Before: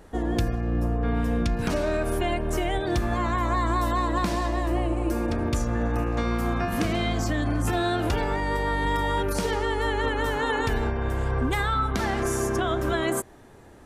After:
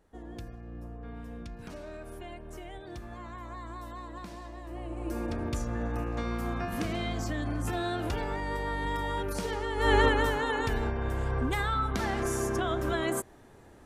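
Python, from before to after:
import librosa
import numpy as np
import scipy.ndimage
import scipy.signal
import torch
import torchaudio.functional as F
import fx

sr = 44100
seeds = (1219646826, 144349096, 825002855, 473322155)

y = fx.gain(x, sr, db=fx.line((4.63, -17.5), (5.18, -7.0), (9.73, -7.0), (9.94, 5.0), (10.44, -4.5)))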